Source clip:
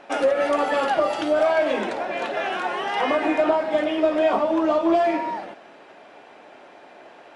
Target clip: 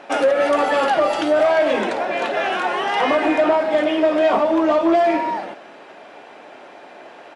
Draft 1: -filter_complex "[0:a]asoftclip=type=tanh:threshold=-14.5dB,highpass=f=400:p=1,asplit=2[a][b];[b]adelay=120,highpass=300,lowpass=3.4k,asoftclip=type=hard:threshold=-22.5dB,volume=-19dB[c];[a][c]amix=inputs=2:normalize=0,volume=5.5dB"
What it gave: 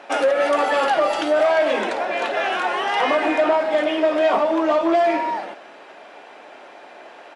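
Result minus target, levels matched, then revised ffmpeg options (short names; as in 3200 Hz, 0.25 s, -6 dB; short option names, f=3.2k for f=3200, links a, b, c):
125 Hz band -5.5 dB
-filter_complex "[0:a]asoftclip=type=tanh:threshold=-14.5dB,highpass=f=100:p=1,asplit=2[a][b];[b]adelay=120,highpass=300,lowpass=3.4k,asoftclip=type=hard:threshold=-22.5dB,volume=-19dB[c];[a][c]amix=inputs=2:normalize=0,volume=5.5dB"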